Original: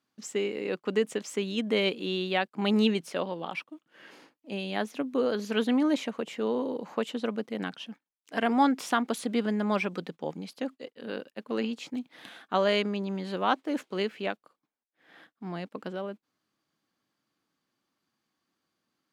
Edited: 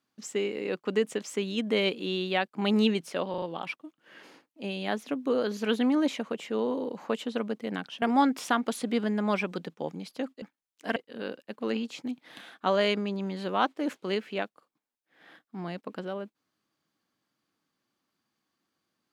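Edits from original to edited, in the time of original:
3.30 s: stutter 0.04 s, 4 plays
7.90–8.44 s: move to 10.84 s

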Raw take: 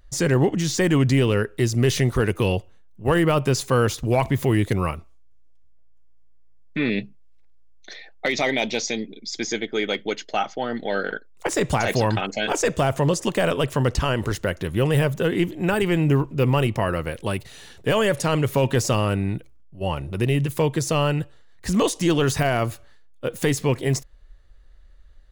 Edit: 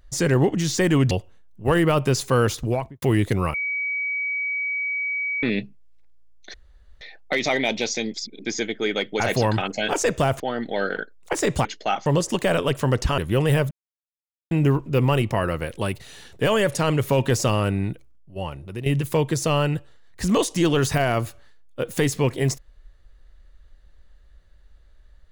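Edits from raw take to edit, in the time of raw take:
1.11–2.51 s: delete
3.97–4.42 s: studio fade out
4.94–6.83 s: bleep 2.27 kHz -23 dBFS
7.94 s: insert room tone 0.47 s
9.07–9.38 s: reverse
10.13–10.54 s: swap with 11.79–12.99 s
14.11–14.63 s: delete
15.16–15.96 s: mute
19.27–20.31 s: fade out, to -11 dB

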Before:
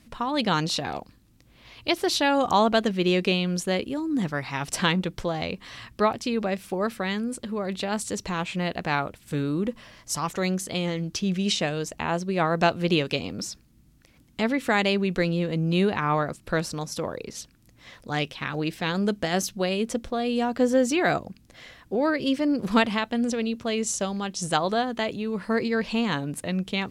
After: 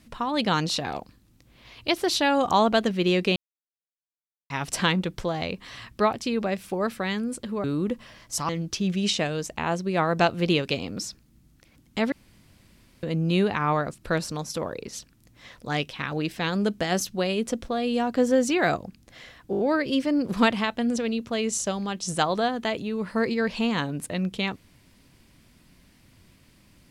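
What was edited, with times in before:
3.36–4.50 s: mute
7.64–9.41 s: delete
10.26–10.91 s: delete
14.54–15.45 s: room tone
21.93 s: stutter 0.02 s, 5 plays

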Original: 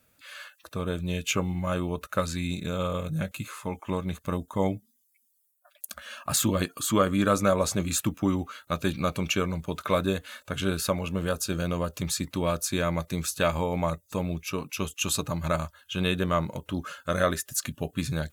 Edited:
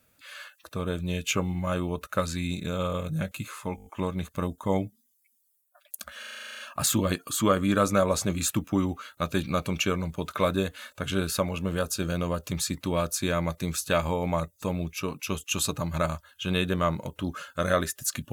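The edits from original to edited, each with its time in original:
3.76 s: stutter 0.02 s, 6 plays
6.09 s: stutter 0.04 s, 11 plays

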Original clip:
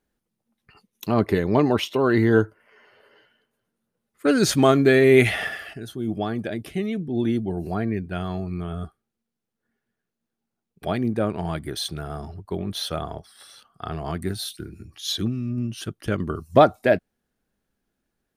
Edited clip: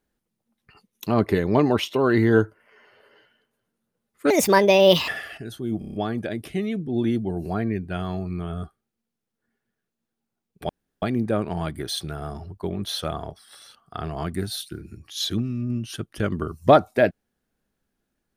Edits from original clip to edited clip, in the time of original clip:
4.30–5.44 s: speed 146%
6.15 s: stutter 0.03 s, 6 plays
10.90 s: insert room tone 0.33 s

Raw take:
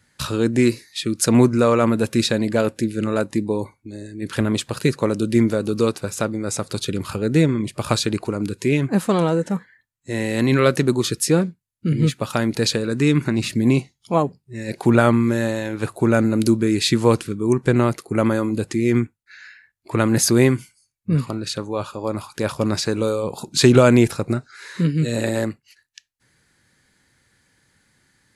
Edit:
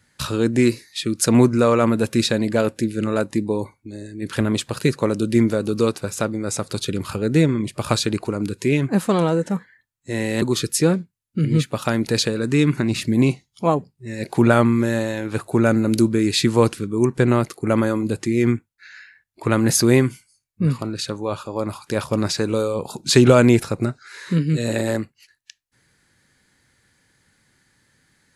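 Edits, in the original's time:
10.42–10.90 s: delete

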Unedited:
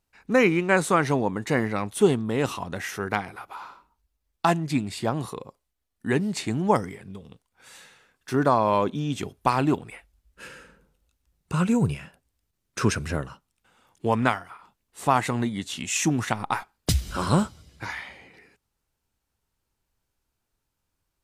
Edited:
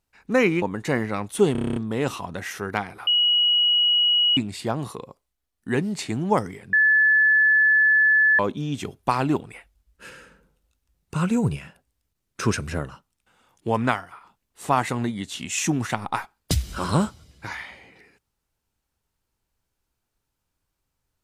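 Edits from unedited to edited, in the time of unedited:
0.62–1.24 s: delete
2.14 s: stutter 0.03 s, 9 plays
3.45–4.75 s: bleep 2.91 kHz -16 dBFS
7.11–8.77 s: bleep 1.73 kHz -14 dBFS

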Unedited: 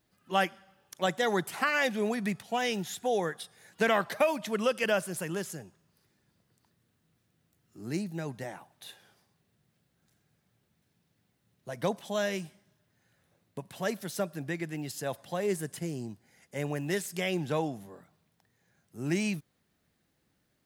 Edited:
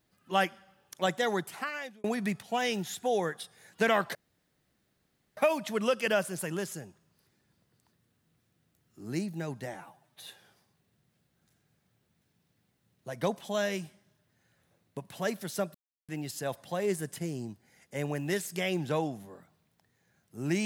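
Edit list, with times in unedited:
1.15–2.04 s: fade out
4.15 s: insert room tone 1.22 s
8.52–8.87 s: stretch 1.5×
14.35–14.69 s: mute

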